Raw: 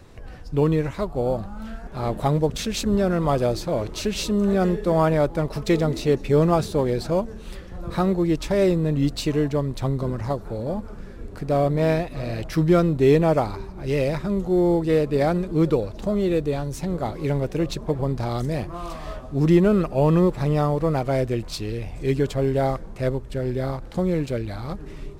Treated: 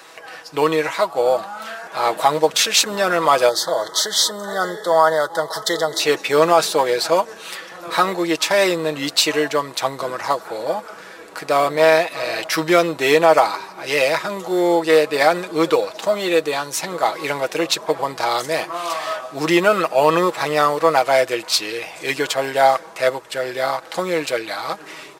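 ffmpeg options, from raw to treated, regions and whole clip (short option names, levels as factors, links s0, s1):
-filter_complex "[0:a]asettb=1/sr,asplit=3[s0][s1][s2];[s0]atrim=end=3.494[s3];[s1]atrim=start=3.49:end=6,asetpts=PTS-STARTPTS,afade=t=in:d=0.004:c=qsin,afade=t=out:st=2.506:d=0.004:c=qsin,equalizer=f=270:t=o:w=0.58:g=-7.5,acompressor=threshold=0.0447:ratio=1.5:attack=3.2:release=140:knee=1:detection=peak,asuperstop=centerf=2500:order=12:qfactor=2.4[s4];[s2]atrim=start=5.996[s5];[s3][s4]acrossfade=d=0.004:c1=hsin:c2=qsin[s6];[s6][s5]acrossfade=d=0.004:c1=qsin:c2=hsin,highpass=840,aecho=1:1:6.2:0.5,alimiter=level_in=5.62:limit=0.891:release=50:level=0:latency=1,volume=0.891"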